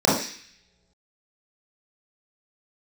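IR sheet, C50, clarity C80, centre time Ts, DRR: 2.0 dB, 7.5 dB, 49 ms, -7.0 dB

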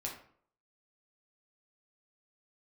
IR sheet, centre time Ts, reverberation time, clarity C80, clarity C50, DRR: 27 ms, 0.55 s, 10.5 dB, 6.5 dB, -2.5 dB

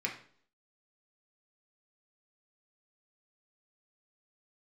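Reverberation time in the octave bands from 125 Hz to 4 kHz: 0.55 s, 0.60 s, 0.55 s, 0.50 s, 0.45 s, 0.50 s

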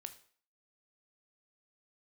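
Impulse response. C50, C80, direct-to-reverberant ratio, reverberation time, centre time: 13.5 dB, 17.5 dB, 8.5 dB, 0.50 s, 6 ms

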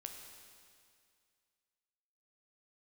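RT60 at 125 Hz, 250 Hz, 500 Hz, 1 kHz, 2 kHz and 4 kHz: 2.2 s, 2.2 s, 2.2 s, 2.2 s, 2.2 s, 2.2 s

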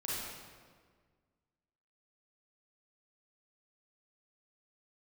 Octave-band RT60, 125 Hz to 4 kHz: 2.0 s, 2.0 s, 1.8 s, 1.6 s, 1.4 s, 1.2 s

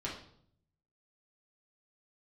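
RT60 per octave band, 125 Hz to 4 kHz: 1.1 s, 0.85 s, 0.70 s, 0.60 s, 0.50 s, 0.55 s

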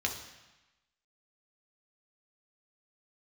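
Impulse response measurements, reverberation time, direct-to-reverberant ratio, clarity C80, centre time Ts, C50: 1.1 s, 1.0 dB, 10.0 dB, 24 ms, 7.5 dB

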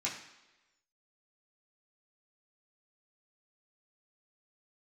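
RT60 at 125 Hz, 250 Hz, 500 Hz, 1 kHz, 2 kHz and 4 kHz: 0.80 s, 0.95 s, 1.1 s, 1.0 s, 1.1 s, 1.0 s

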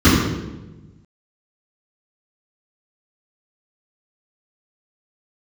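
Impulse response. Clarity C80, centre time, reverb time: 2.5 dB, 80 ms, 1.1 s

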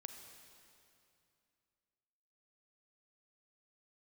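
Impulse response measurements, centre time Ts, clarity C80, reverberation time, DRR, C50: 49 ms, 7.0 dB, 2.6 s, 5.5 dB, 6.0 dB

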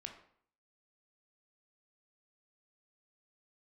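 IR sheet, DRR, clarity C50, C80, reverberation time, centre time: 3.5 dB, 8.0 dB, 11.0 dB, 0.60 s, 19 ms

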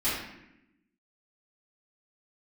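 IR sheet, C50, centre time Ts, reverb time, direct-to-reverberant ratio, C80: 0.5 dB, 63 ms, 0.85 s, -14.5 dB, 4.0 dB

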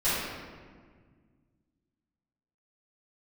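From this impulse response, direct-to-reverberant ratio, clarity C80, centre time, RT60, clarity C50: -16.0 dB, 0.0 dB, 115 ms, 1.7 s, -3.5 dB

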